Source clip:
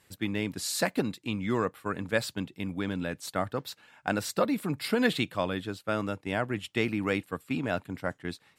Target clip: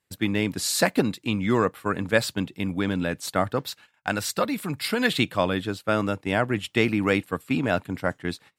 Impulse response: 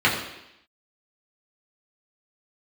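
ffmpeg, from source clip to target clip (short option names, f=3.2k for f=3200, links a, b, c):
-filter_complex "[0:a]agate=range=-21dB:threshold=-53dB:ratio=16:detection=peak,asettb=1/sr,asplit=3[a][b][c];[a]atrim=end=3.704[d];[b]atrim=start=3.7:end=5.19,asetpts=PTS-STARTPTS,afade=t=in:d=0.004:c=qsin,afade=t=out:st=1.486:d=0.004:c=qsin,equalizer=f=340:w=0.38:g=-6.5[e];[c]atrim=start=5.186[f];[d][e]acrossfade=d=0.004:c1=hsin:c2=qsin[g];[g][f]acrossfade=d=0.004:c1=qsin:c2=hsin,volume=6.5dB"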